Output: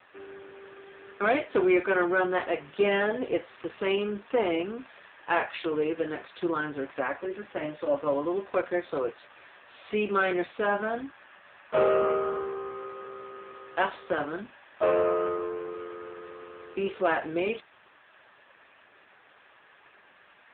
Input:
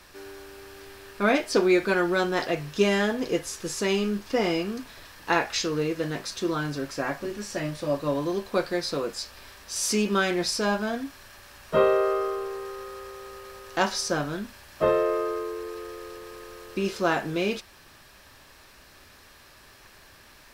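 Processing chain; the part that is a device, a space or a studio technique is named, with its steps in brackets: telephone (BPF 350–3400 Hz; soft clip -16 dBFS, distortion -18 dB; gain +2.5 dB; AMR-NB 5.9 kbps 8000 Hz)

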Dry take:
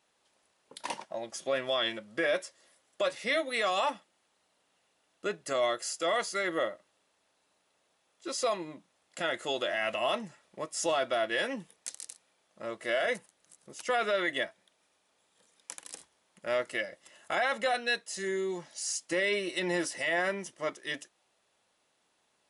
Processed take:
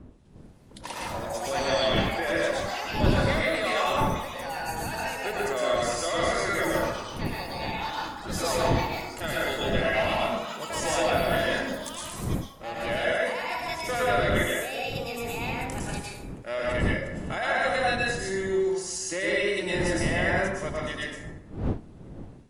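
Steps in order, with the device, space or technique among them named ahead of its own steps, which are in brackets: echoes that change speed 0.296 s, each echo +5 st, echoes 3, each echo -6 dB; plate-style reverb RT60 1 s, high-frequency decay 0.5×, pre-delay 95 ms, DRR -5 dB; smartphone video outdoors (wind noise 230 Hz; AGC gain up to 3.5 dB; gain -5.5 dB; AAC 64 kbps 48000 Hz)

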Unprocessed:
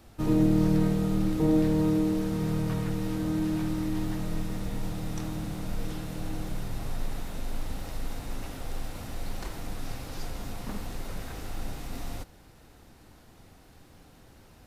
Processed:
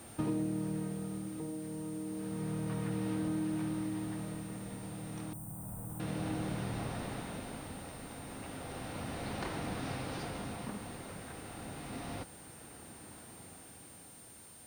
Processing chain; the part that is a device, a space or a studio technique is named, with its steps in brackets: medium wave at night (BPF 110–3700 Hz; compressor, threshold -36 dBFS, peak gain reduction 15.5 dB; tremolo 0.31 Hz, depth 60%; whine 9000 Hz -58 dBFS; white noise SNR 21 dB); 5.33–6 EQ curve 100 Hz 0 dB, 400 Hz -15 dB, 900 Hz -5 dB, 2200 Hz -22 dB, 4700 Hz -24 dB, 7500 Hz 0 dB, 13000 Hz +11 dB; gain +4 dB

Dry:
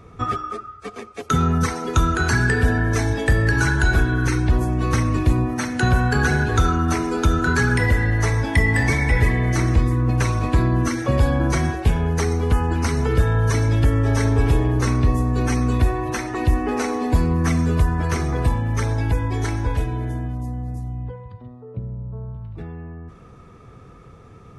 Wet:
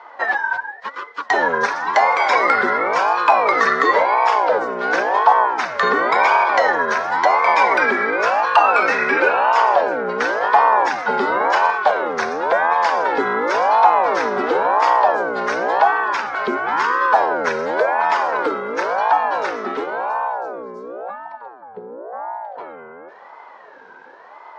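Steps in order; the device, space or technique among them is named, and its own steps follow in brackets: voice changer toy (ring modulator with a swept carrier 550 Hz, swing 45%, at 0.94 Hz; speaker cabinet 520–4900 Hz, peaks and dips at 650 Hz -5 dB, 1000 Hz +6 dB, 1500 Hz +8 dB, 2800 Hz -5 dB); bell 310 Hz -2.5 dB 0.82 oct; gain +6.5 dB

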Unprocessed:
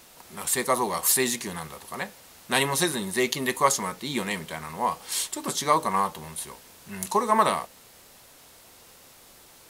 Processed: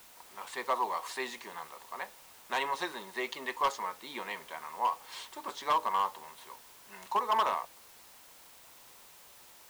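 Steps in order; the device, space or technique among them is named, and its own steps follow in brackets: drive-through speaker (BPF 460–3400 Hz; bell 970 Hz +6.5 dB 0.53 oct; hard clip -14.5 dBFS, distortion -12 dB; white noise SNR 20 dB); gain -8 dB

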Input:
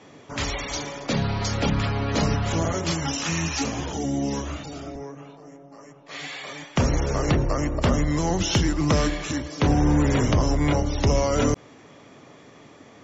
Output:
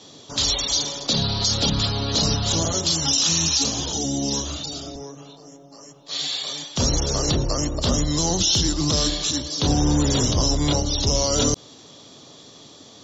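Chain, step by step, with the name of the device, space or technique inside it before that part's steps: over-bright horn tweeter (resonant high shelf 2900 Hz +10 dB, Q 3; limiter -10 dBFS, peak gain reduction 7.5 dB)

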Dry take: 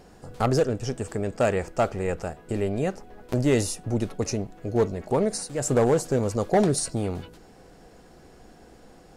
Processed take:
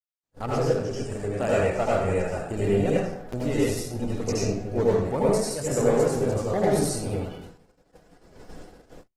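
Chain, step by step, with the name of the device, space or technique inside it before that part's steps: speakerphone in a meeting room (reverb RT60 0.85 s, pre-delay 75 ms, DRR -6.5 dB; AGC gain up to 8.5 dB; gate -32 dBFS, range -53 dB; gain -9 dB; Opus 16 kbps 48000 Hz)

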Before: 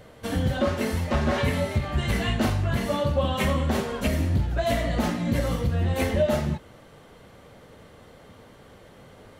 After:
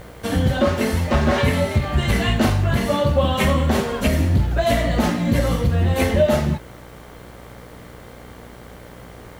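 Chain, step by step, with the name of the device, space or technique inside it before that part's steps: video cassette with head-switching buzz (buzz 60 Hz, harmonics 39, -49 dBFS -4 dB/oct; white noise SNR 36 dB); gain +6 dB

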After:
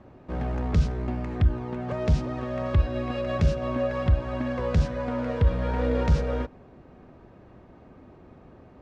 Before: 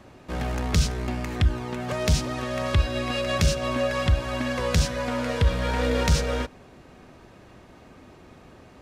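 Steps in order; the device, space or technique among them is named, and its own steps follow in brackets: through cloth (LPF 6900 Hz 12 dB/oct; high shelf 2100 Hz -18 dB)

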